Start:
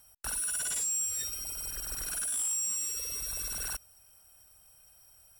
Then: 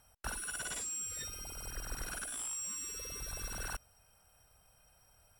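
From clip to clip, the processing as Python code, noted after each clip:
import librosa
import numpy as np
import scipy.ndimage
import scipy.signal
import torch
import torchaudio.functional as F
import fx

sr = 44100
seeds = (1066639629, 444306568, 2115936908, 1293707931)

y = fx.lowpass(x, sr, hz=2100.0, slope=6)
y = F.gain(torch.from_numpy(y), 2.5).numpy()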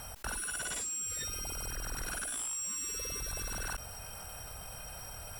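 y = fx.env_flatten(x, sr, amount_pct=70)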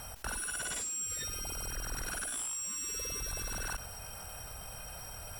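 y = x + 10.0 ** (-16.5 / 20.0) * np.pad(x, (int(96 * sr / 1000.0), 0))[:len(x)]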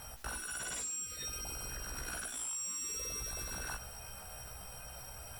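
y = fx.doubler(x, sr, ms=16.0, db=-3.5)
y = F.gain(torch.from_numpy(y), -4.5).numpy()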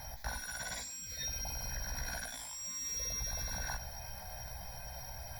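y = fx.fixed_phaser(x, sr, hz=1900.0, stages=8)
y = F.gain(torch.from_numpy(y), 5.0).numpy()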